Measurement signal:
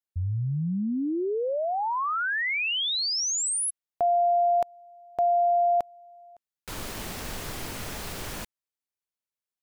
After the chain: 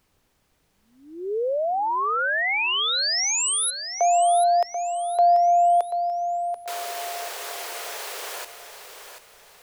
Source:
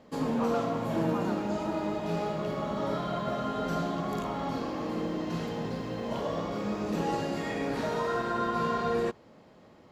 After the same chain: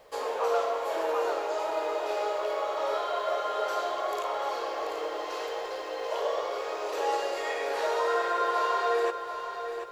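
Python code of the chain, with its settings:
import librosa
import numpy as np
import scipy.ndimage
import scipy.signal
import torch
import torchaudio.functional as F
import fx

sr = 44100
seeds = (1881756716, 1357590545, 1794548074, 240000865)

p1 = scipy.signal.sosfilt(scipy.signal.butter(8, 410.0, 'highpass', fs=sr, output='sos'), x)
p2 = fx.dmg_noise_colour(p1, sr, seeds[0], colour='pink', level_db=-71.0)
p3 = p2 + fx.echo_feedback(p2, sr, ms=736, feedback_pct=37, wet_db=-9, dry=0)
y = F.gain(torch.from_numpy(p3), 3.5).numpy()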